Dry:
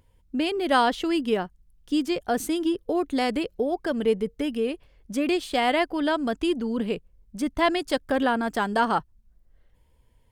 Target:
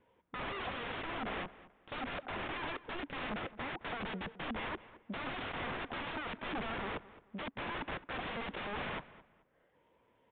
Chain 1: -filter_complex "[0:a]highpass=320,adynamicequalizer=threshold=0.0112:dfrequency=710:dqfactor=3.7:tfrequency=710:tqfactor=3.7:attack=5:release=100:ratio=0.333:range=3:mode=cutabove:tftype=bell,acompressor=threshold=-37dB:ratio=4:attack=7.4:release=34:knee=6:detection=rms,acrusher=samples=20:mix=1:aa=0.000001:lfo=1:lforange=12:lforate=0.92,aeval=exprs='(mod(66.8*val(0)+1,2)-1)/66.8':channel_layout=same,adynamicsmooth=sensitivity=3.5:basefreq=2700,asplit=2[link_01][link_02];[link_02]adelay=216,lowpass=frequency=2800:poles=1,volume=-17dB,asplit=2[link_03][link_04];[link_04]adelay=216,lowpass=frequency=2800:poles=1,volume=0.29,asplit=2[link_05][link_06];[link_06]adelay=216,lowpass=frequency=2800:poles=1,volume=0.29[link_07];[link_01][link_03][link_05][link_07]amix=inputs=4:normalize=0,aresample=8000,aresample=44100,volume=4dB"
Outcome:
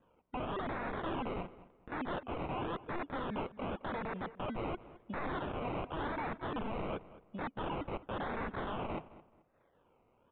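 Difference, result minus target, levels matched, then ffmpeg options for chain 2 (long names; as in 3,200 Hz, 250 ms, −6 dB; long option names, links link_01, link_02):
sample-and-hold swept by an LFO: distortion +9 dB; downward compressor: peak gain reduction +5.5 dB
-filter_complex "[0:a]highpass=320,adynamicequalizer=threshold=0.0112:dfrequency=710:dqfactor=3.7:tfrequency=710:tqfactor=3.7:attack=5:release=100:ratio=0.333:range=3:mode=cutabove:tftype=bell,acompressor=threshold=-29.5dB:ratio=4:attack=7.4:release=34:knee=6:detection=rms,acrusher=samples=6:mix=1:aa=0.000001:lfo=1:lforange=3.6:lforate=0.92,aeval=exprs='(mod(66.8*val(0)+1,2)-1)/66.8':channel_layout=same,adynamicsmooth=sensitivity=3.5:basefreq=2700,asplit=2[link_01][link_02];[link_02]adelay=216,lowpass=frequency=2800:poles=1,volume=-17dB,asplit=2[link_03][link_04];[link_04]adelay=216,lowpass=frequency=2800:poles=1,volume=0.29,asplit=2[link_05][link_06];[link_06]adelay=216,lowpass=frequency=2800:poles=1,volume=0.29[link_07];[link_01][link_03][link_05][link_07]amix=inputs=4:normalize=0,aresample=8000,aresample=44100,volume=4dB"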